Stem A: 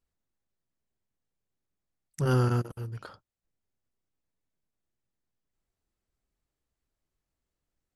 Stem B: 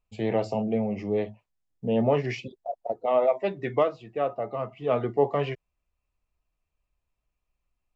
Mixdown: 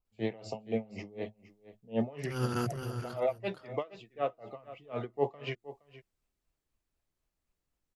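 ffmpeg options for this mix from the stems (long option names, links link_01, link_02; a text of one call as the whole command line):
ffmpeg -i stem1.wav -i stem2.wav -filter_complex "[0:a]bandreject=frequency=60:width_type=h:width=6,bandreject=frequency=120:width_type=h:width=6,alimiter=limit=-19.5dB:level=0:latency=1:release=116,adelay=50,volume=-1dB,asplit=2[link_01][link_02];[link_02]volume=-12dB[link_03];[1:a]aeval=exprs='val(0)*pow(10,-25*(0.5-0.5*cos(2*PI*4*n/s))/20)':channel_layout=same,volume=-3.5dB,asplit=3[link_04][link_05][link_06];[link_05]volume=-16dB[link_07];[link_06]apad=whole_len=352822[link_08];[link_01][link_08]sidechaincompress=threshold=-48dB:ratio=10:attack=16:release=150[link_09];[link_03][link_07]amix=inputs=2:normalize=0,aecho=0:1:468:1[link_10];[link_09][link_04][link_10]amix=inputs=3:normalize=0,adynamicequalizer=threshold=0.00316:dfrequency=1800:dqfactor=0.7:tfrequency=1800:tqfactor=0.7:attack=5:release=100:ratio=0.375:range=3:mode=boostabove:tftype=highshelf" out.wav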